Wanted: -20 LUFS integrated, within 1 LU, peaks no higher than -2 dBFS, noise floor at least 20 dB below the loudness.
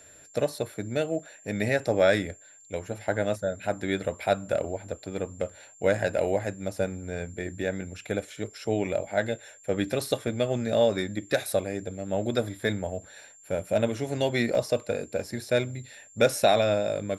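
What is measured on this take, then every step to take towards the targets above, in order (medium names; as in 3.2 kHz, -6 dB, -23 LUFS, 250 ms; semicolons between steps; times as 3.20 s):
dropouts 2; longest dropout 1.6 ms; steady tone 7.3 kHz; tone level -51 dBFS; loudness -28.5 LUFS; peak level -8.5 dBFS; loudness target -20.0 LUFS
-> interpolate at 10.28/14.55 s, 1.6 ms; band-stop 7.3 kHz, Q 30; trim +8.5 dB; peak limiter -2 dBFS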